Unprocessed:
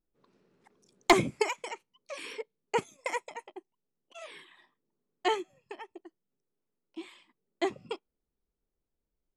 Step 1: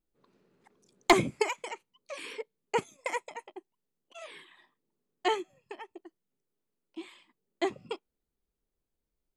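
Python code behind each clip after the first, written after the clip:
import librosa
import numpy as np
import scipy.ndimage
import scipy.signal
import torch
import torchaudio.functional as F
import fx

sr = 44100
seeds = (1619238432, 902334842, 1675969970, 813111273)

y = fx.notch(x, sr, hz=5500.0, q=15.0)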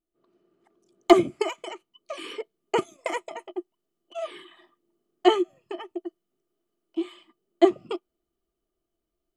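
y = fx.rider(x, sr, range_db=5, speed_s=2.0)
y = fx.small_body(y, sr, hz=(350.0, 660.0, 1200.0, 3000.0), ring_ms=55, db=16)
y = y * 10.0 ** (-2.5 / 20.0)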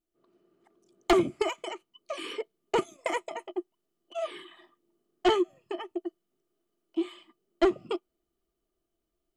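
y = 10.0 ** (-16.0 / 20.0) * np.tanh(x / 10.0 ** (-16.0 / 20.0))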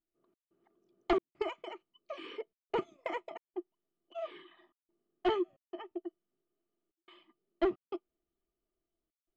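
y = fx.step_gate(x, sr, bpm=89, pattern='xx.xxxx.xxxxx', floor_db=-60.0, edge_ms=4.5)
y = fx.air_absorb(y, sr, metres=220.0)
y = y * 10.0 ** (-6.0 / 20.0)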